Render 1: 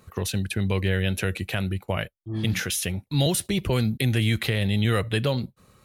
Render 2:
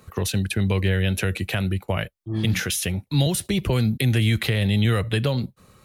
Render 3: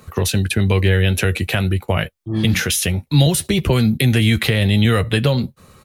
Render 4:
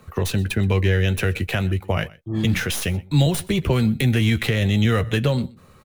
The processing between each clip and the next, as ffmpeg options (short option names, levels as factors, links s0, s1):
-filter_complex "[0:a]acrossover=split=180[s0][s1];[s1]acompressor=threshold=0.0562:ratio=6[s2];[s0][s2]amix=inputs=2:normalize=0,volume=1.5"
-filter_complex "[0:a]asplit=2[s0][s1];[s1]adelay=13,volume=0.282[s2];[s0][s2]amix=inputs=2:normalize=0,volume=2"
-filter_complex "[0:a]acrossover=split=720|3200[s0][s1][s2];[s2]aeval=exprs='max(val(0),0)':c=same[s3];[s0][s1][s3]amix=inputs=3:normalize=0,aecho=1:1:124:0.075,volume=0.668"